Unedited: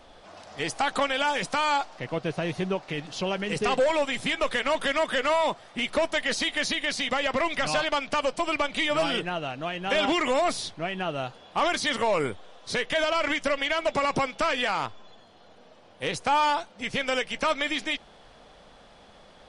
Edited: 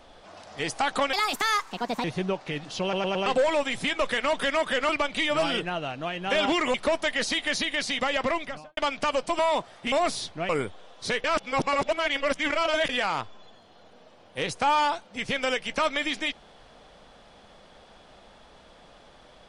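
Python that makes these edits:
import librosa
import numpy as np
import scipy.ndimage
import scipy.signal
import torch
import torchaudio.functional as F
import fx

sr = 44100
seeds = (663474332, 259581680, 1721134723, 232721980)

y = fx.studio_fade_out(x, sr, start_s=7.33, length_s=0.54)
y = fx.edit(y, sr, fx.speed_span(start_s=1.13, length_s=1.33, speed=1.46),
    fx.stutter_over(start_s=3.24, slice_s=0.11, count=4),
    fx.swap(start_s=5.31, length_s=0.53, other_s=8.49, other_length_s=1.85),
    fx.cut(start_s=10.91, length_s=1.23),
    fx.reverse_span(start_s=12.89, length_s=1.65), tone=tone)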